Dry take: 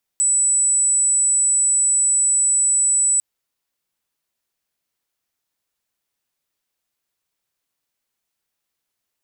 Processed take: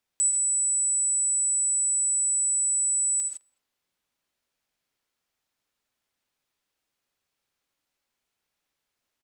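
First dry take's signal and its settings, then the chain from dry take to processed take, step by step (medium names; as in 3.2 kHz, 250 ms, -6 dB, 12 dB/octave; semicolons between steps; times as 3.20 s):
tone sine 7.94 kHz -14 dBFS 3.00 s
treble shelf 7.5 kHz -10 dB; speakerphone echo 210 ms, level -24 dB; gated-style reverb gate 180 ms rising, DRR 3.5 dB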